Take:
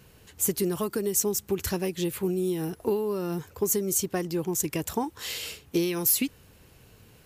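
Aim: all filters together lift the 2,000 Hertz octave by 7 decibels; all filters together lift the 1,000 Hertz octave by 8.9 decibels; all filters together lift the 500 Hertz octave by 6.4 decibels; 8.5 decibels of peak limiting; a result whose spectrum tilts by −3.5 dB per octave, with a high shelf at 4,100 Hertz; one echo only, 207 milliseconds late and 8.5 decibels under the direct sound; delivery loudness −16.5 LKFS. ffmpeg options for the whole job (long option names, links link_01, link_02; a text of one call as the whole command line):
ffmpeg -i in.wav -af "equalizer=frequency=500:width_type=o:gain=7.5,equalizer=frequency=1000:width_type=o:gain=7,equalizer=frequency=2000:width_type=o:gain=5.5,highshelf=frequency=4100:gain=5,alimiter=limit=-16dB:level=0:latency=1,aecho=1:1:207:0.376,volume=9dB" out.wav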